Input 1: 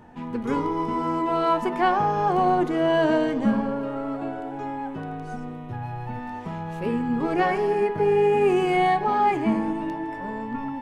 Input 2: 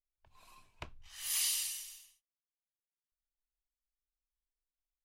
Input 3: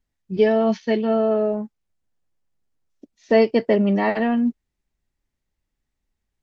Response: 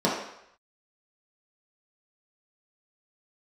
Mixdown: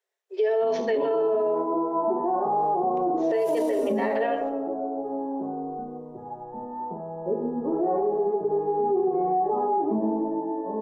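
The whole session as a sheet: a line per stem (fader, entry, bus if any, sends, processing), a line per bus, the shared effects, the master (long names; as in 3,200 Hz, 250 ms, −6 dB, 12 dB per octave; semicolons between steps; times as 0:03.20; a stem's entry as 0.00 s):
−8.5 dB, 0.45 s, send −9.5 dB, inverse Chebyshev low-pass filter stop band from 5,200 Hz, stop band 80 dB
−11.0 dB, 2.15 s, send −15.5 dB, no processing
0.0 dB, 0.00 s, send −20 dB, Chebyshev high-pass filter 380 Hz, order 8; downward compressor, threshold −19 dBFS, peak gain reduction 8 dB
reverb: on, RT60 0.75 s, pre-delay 3 ms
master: low shelf with overshoot 280 Hz −8 dB, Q 1.5; brickwall limiter −17 dBFS, peak gain reduction 12 dB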